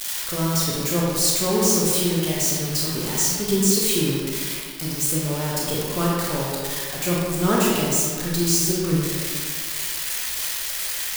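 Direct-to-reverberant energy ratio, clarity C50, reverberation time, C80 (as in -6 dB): -5.0 dB, -2.0 dB, 2.0 s, 0.0 dB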